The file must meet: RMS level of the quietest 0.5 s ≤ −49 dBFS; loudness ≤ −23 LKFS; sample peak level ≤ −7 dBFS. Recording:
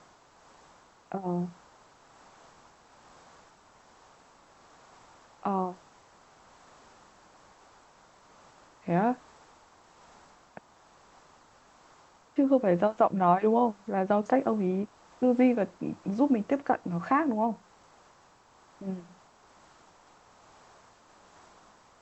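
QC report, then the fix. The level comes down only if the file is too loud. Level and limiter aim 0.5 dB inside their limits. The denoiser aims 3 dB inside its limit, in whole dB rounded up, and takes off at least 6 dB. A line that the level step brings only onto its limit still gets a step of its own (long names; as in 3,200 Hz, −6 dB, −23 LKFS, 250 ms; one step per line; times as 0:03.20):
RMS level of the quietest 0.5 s −60 dBFS: in spec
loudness −28.0 LKFS: in spec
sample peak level −10.0 dBFS: in spec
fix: no processing needed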